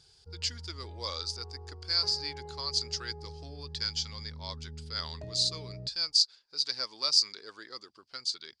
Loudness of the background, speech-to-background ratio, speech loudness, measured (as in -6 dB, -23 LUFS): -46.0 LUFS, 15.5 dB, -30.5 LUFS